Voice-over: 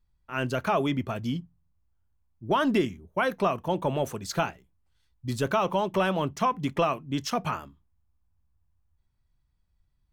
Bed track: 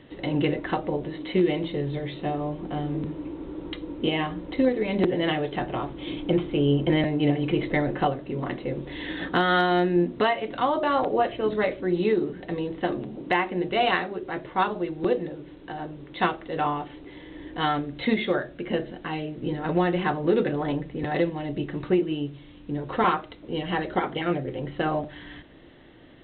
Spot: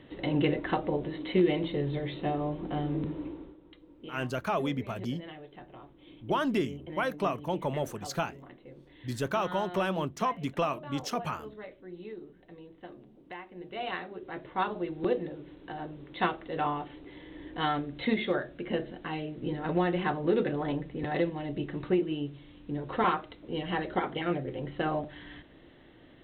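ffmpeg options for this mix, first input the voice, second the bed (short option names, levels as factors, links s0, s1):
-filter_complex "[0:a]adelay=3800,volume=0.596[s0];[1:a]volume=4.47,afade=t=out:st=3.22:d=0.35:silence=0.133352,afade=t=in:st=13.49:d=1.44:silence=0.16788[s1];[s0][s1]amix=inputs=2:normalize=0"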